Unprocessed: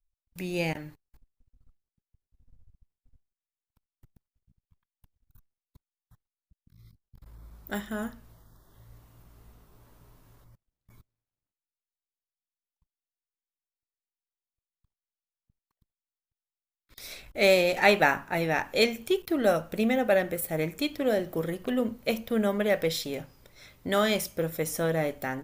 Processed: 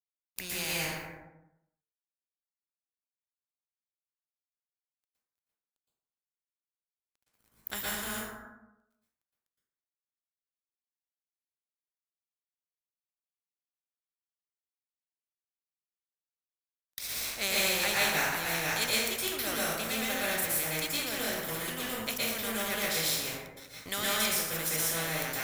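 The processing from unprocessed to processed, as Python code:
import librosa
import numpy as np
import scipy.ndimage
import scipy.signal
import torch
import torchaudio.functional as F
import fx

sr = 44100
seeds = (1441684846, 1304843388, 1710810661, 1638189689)

y = fx.highpass(x, sr, hz=45.0, slope=6)
y = fx.tone_stack(y, sr, knobs='5-5-5')
y = np.sign(y) * np.maximum(np.abs(y) - 10.0 ** (-58.0 / 20.0), 0.0)
y = fx.rev_plate(y, sr, seeds[0], rt60_s=0.83, hf_ratio=0.5, predelay_ms=105, drr_db=-9.0)
y = fx.spectral_comp(y, sr, ratio=2.0)
y = F.gain(torch.from_numpy(y), -4.0).numpy()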